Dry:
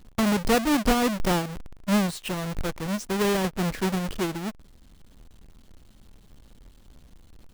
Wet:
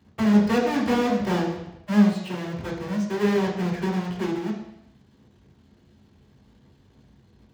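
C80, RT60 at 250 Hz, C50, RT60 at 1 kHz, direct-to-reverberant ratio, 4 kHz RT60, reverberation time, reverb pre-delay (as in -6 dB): 8.0 dB, 0.80 s, 5.0 dB, 0.85 s, -4.5 dB, 0.80 s, 0.80 s, 3 ms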